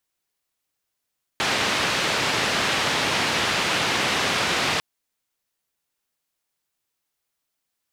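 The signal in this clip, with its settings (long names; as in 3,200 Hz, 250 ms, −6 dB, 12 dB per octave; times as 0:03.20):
band-limited noise 100–3,400 Hz, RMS −23 dBFS 3.40 s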